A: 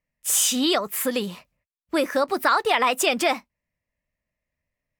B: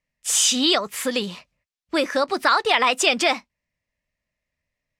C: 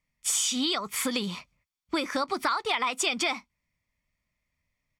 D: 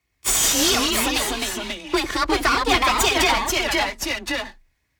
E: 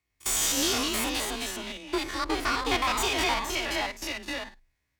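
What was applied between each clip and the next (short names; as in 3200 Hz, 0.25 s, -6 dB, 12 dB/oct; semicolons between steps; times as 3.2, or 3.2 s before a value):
LPF 5200 Hz 12 dB/oct; high shelf 3300 Hz +11.5 dB
comb 0.9 ms, depth 44%; compressor 5:1, threshold -25 dBFS, peak gain reduction 12 dB
minimum comb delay 2.8 ms; frequency shift +29 Hz; echoes that change speed 0.118 s, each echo -2 st, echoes 2; gain +8.5 dB
stepped spectrum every 50 ms; gain -6 dB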